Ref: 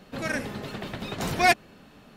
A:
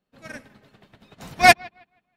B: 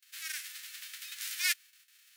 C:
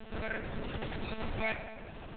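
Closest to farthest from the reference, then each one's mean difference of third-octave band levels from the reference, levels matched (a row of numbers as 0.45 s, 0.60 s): C, A, B; 11.0 dB, 16.0 dB, 21.0 dB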